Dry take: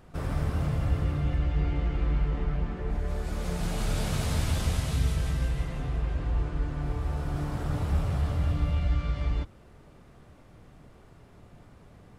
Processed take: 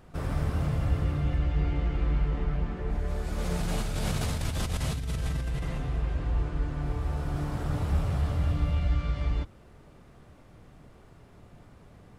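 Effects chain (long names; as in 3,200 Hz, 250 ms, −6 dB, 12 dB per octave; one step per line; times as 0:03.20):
0:03.38–0:05.78: compressor whose output falls as the input rises −29 dBFS, ratio −1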